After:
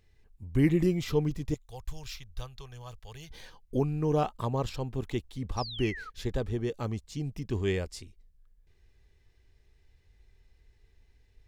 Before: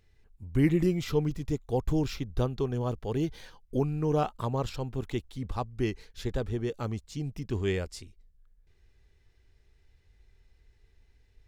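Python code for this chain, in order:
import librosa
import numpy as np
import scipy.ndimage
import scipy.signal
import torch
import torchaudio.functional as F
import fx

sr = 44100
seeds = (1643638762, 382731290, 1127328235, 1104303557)

y = fx.tone_stack(x, sr, knobs='10-0-10', at=(1.54, 3.31))
y = fx.spec_paint(y, sr, seeds[0], shape='fall', start_s=5.57, length_s=0.53, low_hz=1200.0, high_hz=5900.0, level_db=-41.0)
y = fx.notch(y, sr, hz=1400.0, q=11.0)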